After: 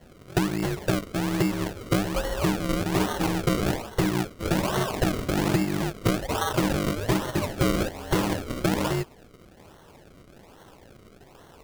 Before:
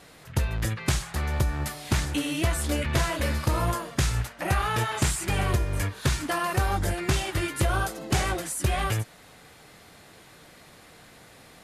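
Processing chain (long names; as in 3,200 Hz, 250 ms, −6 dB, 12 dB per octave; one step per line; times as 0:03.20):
ring modulation 250 Hz
sample-and-hold swept by an LFO 35×, swing 100% 1.2 Hz
level +3.5 dB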